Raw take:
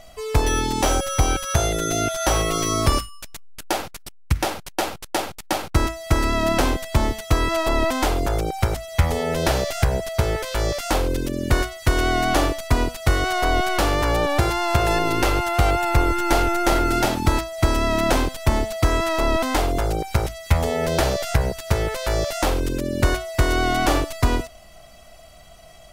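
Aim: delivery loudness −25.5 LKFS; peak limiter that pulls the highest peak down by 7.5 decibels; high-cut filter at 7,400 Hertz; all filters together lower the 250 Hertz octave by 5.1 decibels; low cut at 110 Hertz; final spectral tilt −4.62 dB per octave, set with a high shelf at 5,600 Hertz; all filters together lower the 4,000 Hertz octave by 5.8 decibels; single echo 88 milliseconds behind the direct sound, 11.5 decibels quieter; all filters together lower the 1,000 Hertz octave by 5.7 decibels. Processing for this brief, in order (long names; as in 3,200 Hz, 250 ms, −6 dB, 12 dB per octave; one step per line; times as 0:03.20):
high-pass filter 110 Hz
low-pass filter 7,400 Hz
parametric band 250 Hz −6.5 dB
parametric band 1,000 Hz −7.5 dB
parametric band 4,000 Hz −4.5 dB
high-shelf EQ 5,600 Hz −6 dB
brickwall limiter −16.5 dBFS
single-tap delay 88 ms −11.5 dB
level +2.5 dB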